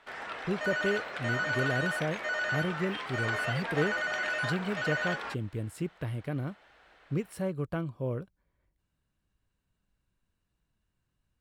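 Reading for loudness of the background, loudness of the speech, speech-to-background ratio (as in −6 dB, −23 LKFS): −32.5 LKFS, −35.0 LKFS, −2.5 dB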